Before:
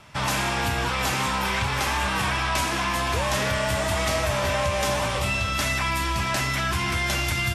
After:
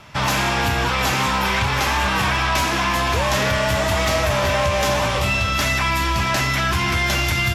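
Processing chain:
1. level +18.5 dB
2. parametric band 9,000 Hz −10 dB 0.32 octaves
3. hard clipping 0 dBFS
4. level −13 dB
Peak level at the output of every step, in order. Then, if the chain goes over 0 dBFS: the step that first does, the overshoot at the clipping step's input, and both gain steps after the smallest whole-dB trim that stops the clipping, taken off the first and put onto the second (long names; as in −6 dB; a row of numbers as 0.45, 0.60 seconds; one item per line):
+6.0, +5.5, 0.0, −13.0 dBFS
step 1, 5.5 dB
step 1 +12.5 dB, step 4 −7 dB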